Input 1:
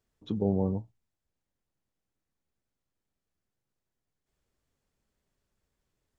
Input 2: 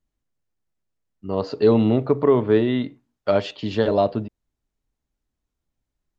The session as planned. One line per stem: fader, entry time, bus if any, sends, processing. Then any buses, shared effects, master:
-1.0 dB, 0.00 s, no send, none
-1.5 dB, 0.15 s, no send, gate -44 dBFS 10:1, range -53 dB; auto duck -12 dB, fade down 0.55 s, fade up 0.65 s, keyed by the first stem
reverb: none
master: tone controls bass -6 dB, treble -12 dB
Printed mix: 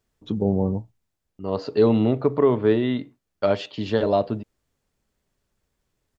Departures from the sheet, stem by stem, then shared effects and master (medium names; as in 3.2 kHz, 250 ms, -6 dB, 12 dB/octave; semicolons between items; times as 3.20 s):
stem 1 -1.0 dB -> +5.5 dB; master: missing tone controls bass -6 dB, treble -12 dB